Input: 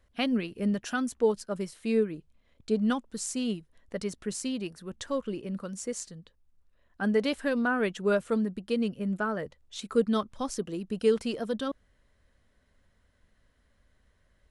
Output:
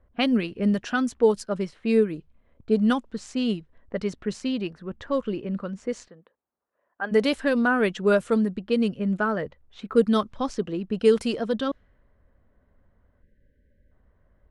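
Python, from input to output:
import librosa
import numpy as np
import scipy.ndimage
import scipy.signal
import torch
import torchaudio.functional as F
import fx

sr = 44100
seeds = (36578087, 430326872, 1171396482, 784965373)

y = fx.env_lowpass(x, sr, base_hz=1100.0, full_db=-23.0)
y = fx.bandpass_edges(y, sr, low_hz=fx.line((6.07, 350.0), (7.11, 620.0)), high_hz=2800.0, at=(6.07, 7.11), fade=0.02)
y = fx.spec_box(y, sr, start_s=13.22, length_s=0.7, low_hz=620.0, high_hz=1500.0, gain_db=-28)
y = F.gain(torch.from_numpy(y), 5.5).numpy()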